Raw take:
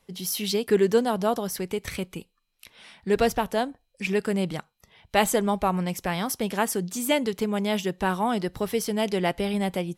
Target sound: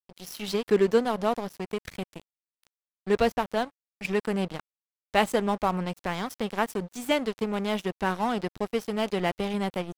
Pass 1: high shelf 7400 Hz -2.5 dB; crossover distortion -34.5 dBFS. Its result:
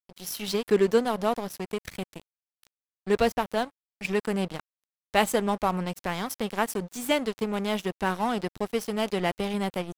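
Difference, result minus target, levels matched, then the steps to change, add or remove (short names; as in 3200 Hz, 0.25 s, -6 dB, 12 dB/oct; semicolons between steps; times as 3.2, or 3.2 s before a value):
8000 Hz band +5.5 dB
change: high shelf 7400 Hz -10 dB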